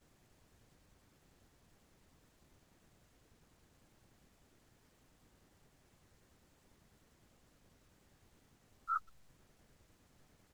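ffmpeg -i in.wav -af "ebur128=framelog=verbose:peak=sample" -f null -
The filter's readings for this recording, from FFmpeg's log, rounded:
Integrated loudness:
  I:         -41.0 LUFS
  Threshold: -63.9 LUFS
Loudness range:
  LRA:        20.7 LU
  Threshold: -75.3 LUFS
  LRA low:   -69.4 LUFS
  LRA high:  -48.7 LUFS
Sample peak:
  Peak:      -24.7 dBFS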